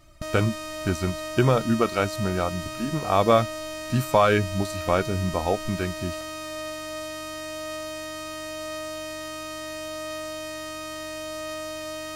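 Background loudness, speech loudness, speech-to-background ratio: -34.0 LUFS, -25.0 LUFS, 9.0 dB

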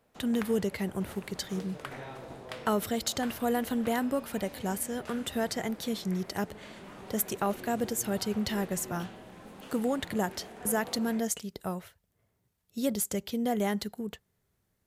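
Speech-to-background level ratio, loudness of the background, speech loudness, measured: 14.0 dB, -46.0 LUFS, -32.0 LUFS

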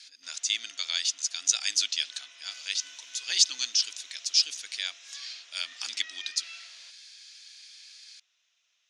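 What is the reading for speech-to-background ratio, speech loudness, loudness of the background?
19.0 dB, -28.0 LUFS, -47.0 LUFS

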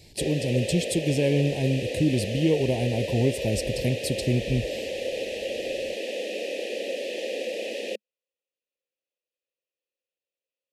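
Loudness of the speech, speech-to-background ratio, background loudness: -26.0 LUFS, 5.5 dB, -31.5 LUFS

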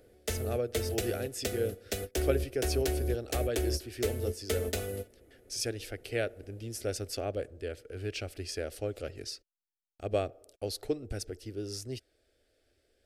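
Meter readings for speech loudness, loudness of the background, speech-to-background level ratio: -36.5 LUFS, -35.0 LUFS, -1.5 dB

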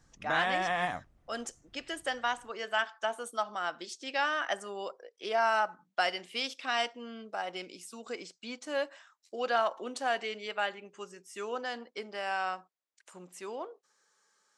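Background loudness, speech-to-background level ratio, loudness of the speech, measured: -32.0 LUFS, -2.5 dB, -34.5 LUFS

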